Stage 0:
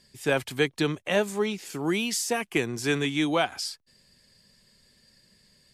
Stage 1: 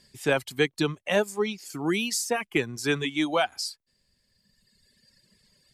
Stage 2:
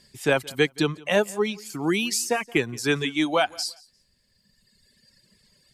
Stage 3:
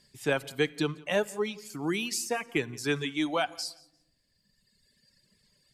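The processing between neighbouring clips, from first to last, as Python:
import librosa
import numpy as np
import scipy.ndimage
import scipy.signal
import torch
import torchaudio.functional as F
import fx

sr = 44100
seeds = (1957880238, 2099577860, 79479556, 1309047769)

y1 = fx.dereverb_blind(x, sr, rt60_s=1.9)
y1 = y1 * librosa.db_to_amplitude(1.0)
y2 = fx.echo_feedback(y1, sr, ms=173, feedback_pct=22, wet_db=-23.5)
y2 = y2 * librosa.db_to_amplitude(2.5)
y3 = fx.room_shoebox(y2, sr, seeds[0], volume_m3=3400.0, walls='furnished', distance_m=0.39)
y3 = y3 * librosa.db_to_amplitude(-6.5)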